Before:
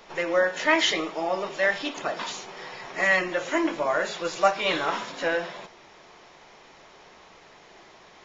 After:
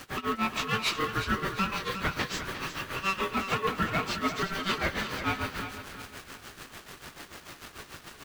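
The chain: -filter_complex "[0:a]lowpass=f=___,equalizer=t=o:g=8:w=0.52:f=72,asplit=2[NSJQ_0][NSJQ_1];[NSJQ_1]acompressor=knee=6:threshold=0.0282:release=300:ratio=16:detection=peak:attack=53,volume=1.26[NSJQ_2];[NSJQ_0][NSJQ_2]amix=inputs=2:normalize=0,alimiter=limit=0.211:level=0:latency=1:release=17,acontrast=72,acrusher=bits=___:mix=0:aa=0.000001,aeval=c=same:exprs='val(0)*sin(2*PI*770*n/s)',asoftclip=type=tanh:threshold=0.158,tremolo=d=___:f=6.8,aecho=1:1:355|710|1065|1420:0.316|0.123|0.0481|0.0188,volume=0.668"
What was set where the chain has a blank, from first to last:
5200, 5, 0.93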